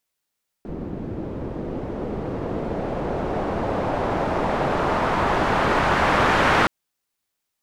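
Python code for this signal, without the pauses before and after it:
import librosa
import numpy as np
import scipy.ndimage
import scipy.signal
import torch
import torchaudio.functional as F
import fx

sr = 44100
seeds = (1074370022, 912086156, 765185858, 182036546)

y = fx.riser_noise(sr, seeds[0], length_s=6.02, colour='white', kind='lowpass', start_hz=290.0, end_hz=1500.0, q=1.1, swell_db=7.0, law='exponential')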